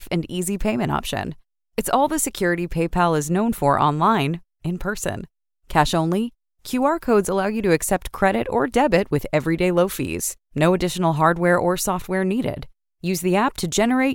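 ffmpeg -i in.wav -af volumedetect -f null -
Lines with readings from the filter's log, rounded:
mean_volume: -21.1 dB
max_volume: -1.6 dB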